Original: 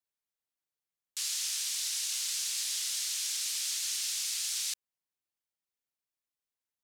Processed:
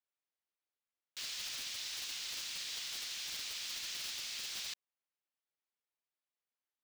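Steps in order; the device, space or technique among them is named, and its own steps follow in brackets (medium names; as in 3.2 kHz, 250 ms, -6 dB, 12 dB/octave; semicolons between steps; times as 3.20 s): early digital voice recorder (band-pass 300–3800 Hz; block-companded coder 3-bit); trim -1.5 dB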